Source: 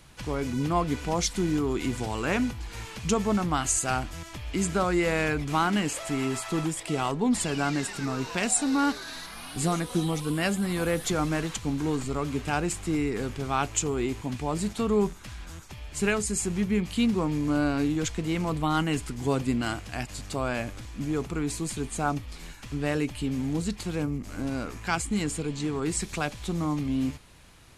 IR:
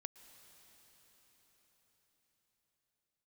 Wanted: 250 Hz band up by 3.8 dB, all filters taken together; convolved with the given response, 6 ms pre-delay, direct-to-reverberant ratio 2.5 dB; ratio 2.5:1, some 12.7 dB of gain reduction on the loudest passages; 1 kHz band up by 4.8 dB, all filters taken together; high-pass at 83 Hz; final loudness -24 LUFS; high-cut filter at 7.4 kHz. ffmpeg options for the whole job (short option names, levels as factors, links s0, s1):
-filter_complex "[0:a]highpass=83,lowpass=7400,equalizer=f=250:t=o:g=4.5,equalizer=f=1000:t=o:g=6,acompressor=threshold=0.0158:ratio=2.5,asplit=2[s0][s1];[1:a]atrim=start_sample=2205,adelay=6[s2];[s1][s2]afir=irnorm=-1:irlink=0,volume=1.33[s3];[s0][s3]amix=inputs=2:normalize=0,volume=2.99"